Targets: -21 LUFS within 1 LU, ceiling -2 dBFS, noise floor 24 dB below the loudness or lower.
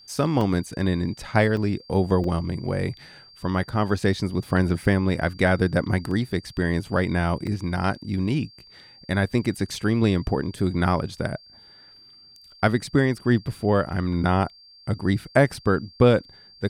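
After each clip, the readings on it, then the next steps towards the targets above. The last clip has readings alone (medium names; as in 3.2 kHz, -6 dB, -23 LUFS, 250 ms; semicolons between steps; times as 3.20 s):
dropouts 6; longest dropout 2.6 ms; steady tone 4.7 kHz; tone level -48 dBFS; loudness -24.0 LUFS; peak level -3.5 dBFS; loudness target -21.0 LUFS
-> interpolate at 0.41/1.57/2.24/6.11/7.47/15.54 s, 2.6 ms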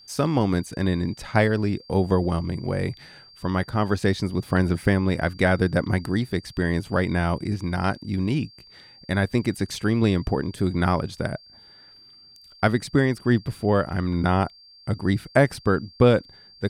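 dropouts 0; steady tone 4.7 kHz; tone level -48 dBFS
-> band-stop 4.7 kHz, Q 30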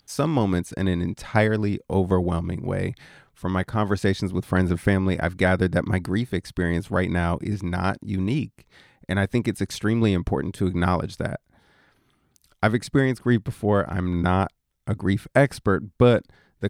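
steady tone not found; loudness -24.0 LUFS; peak level -3.5 dBFS; loudness target -21.0 LUFS
-> trim +3 dB; peak limiter -2 dBFS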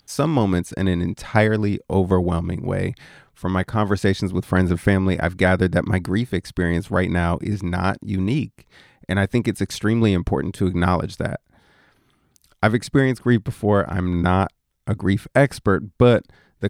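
loudness -21.0 LUFS; peak level -2.0 dBFS; noise floor -65 dBFS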